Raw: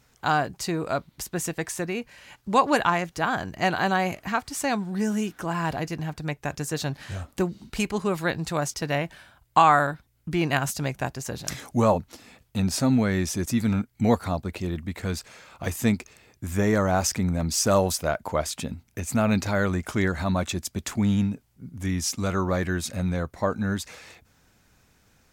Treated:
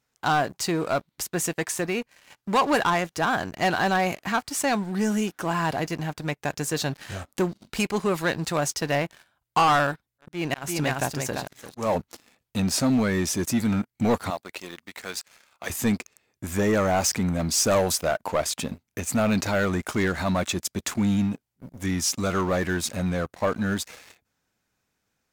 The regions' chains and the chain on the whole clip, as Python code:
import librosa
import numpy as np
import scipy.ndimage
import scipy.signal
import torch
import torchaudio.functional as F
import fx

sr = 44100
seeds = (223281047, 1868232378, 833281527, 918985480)

y = fx.chain(x, sr, fx.echo_single(ms=344, db=-6.5),
    fx.auto_swell(attack_ms=283.0), at=(9.84, 11.95))
y = fx.chain(y, sr, fx.quant_companded(bits=8),
    fx.highpass(hz=990.0, slope=6), at=(14.3, 15.7))
y = fx.low_shelf(y, sr, hz=110.0, db=-11.0)
y = fx.leveller(y, sr, passes=3)
y = y * 10.0 ** (-7.5 / 20.0)